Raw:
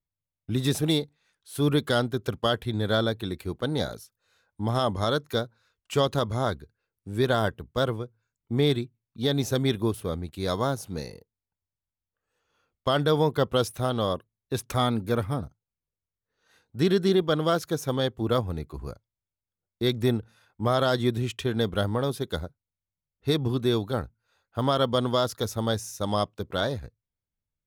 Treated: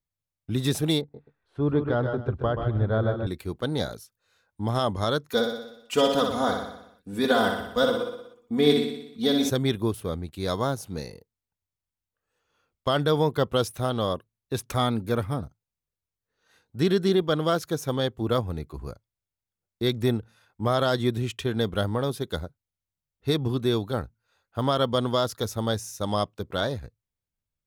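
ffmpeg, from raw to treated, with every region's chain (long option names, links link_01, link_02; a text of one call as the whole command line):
ffmpeg -i in.wav -filter_complex "[0:a]asettb=1/sr,asplit=3[link_01][link_02][link_03];[link_01]atrim=end=1.014[link_04];[link_02]atrim=start=1.01:end=3.27,asetpts=PTS-STARTPTS,afade=type=in:duration=0.004:curve=qsin,afade=type=out:start_time=2.256:duration=0.004:curve=qsin,aecho=1:1:130|153|260|850:0.422|0.376|0.119|0.133,atrim=end_sample=99666,asubboost=boost=10:cutoff=83,lowpass=1200[link_05];[link_03]atrim=start=3.266[link_06];[link_04][link_05]acrossfade=duration=0.004:curve1=hsin:curve2=qsin[link_07];[link_07][link_06]acrossfade=duration=0.004:curve1=qsin:curve2=hsin,asettb=1/sr,asplit=3[link_08][link_09][link_10];[link_08]atrim=end=5.314[link_11];[link_09]atrim=start=5.31:end=9.5,asetpts=PTS-STARTPTS,afade=type=in:duration=0.004:curve=qsin,afade=type=out:start_time=4.186:duration=0.004:curve=qsin,lowshelf=frequency=120:gain=-8,aecho=1:1:4.1:0.83,atrim=end_sample=184779,aecho=1:1:61|122|183|244|305|366|427|488:0.562|0.332|0.196|0.115|0.0681|0.0402|0.0237|0.014,atrim=end_sample=184779[link_12];[link_10]atrim=start=9.496[link_13];[link_11][link_12]acrossfade=duration=0.004:curve1=hsin:curve2=qsin[link_14];[link_14][link_13]acrossfade=duration=0.004:curve1=qsin:curve2=hsin" out.wav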